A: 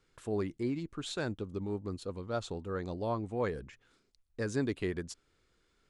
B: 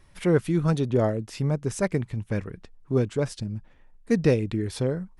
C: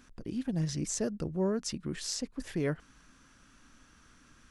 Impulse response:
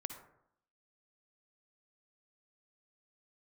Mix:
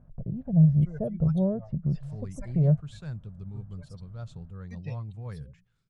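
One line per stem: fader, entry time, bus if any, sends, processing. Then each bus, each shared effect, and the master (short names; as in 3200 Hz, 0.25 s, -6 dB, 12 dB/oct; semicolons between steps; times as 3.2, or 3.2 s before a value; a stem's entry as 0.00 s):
-12.5 dB, 1.85 s, no send, dry
-11.5 dB, 0.60 s, no send, per-bin expansion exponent 3; HPF 770 Hz 6 dB/oct; rotary speaker horn 1.1 Hz
-4.0 dB, 0.00 s, no send, synth low-pass 630 Hz, resonance Q 4.9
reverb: off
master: resonant low shelf 210 Hz +12 dB, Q 3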